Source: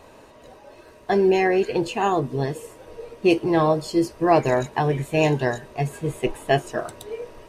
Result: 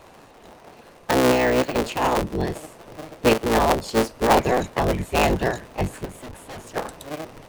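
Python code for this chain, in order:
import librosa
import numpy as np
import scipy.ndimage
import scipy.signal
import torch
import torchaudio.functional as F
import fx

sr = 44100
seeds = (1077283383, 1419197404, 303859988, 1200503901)

y = fx.cycle_switch(x, sr, every=3, mode='inverted')
y = fx.resample_bad(y, sr, factor=2, down='filtered', up='hold', at=(1.32, 1.81))
y = fx.tube_stage(y, sr, drive_db=35.0, bias=0.5, at=(6.04, 6.75), fade=0.02)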